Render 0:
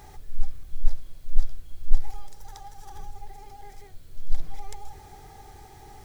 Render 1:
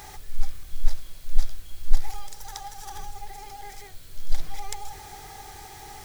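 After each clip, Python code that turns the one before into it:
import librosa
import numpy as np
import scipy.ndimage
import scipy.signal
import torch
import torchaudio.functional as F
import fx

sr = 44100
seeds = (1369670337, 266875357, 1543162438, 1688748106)

y = fx.tilt_shelf(x, sr, db=-5.5, hz=830.0)
y = F.gain(torch.from_numpy(y), 5.5).numpy()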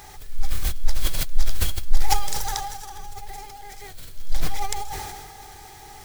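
y = fx.sustainer(x, sr, db_per_s=34.0)
y = F.gain(torch.from_numpy(y), -1.0).numpy()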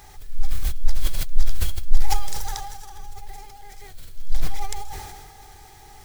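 y = fx.low_shelf(x, sr, hz=94.0, db=6.5)
y = F.gain(torch.from_numpy(y), -4.5).numpy()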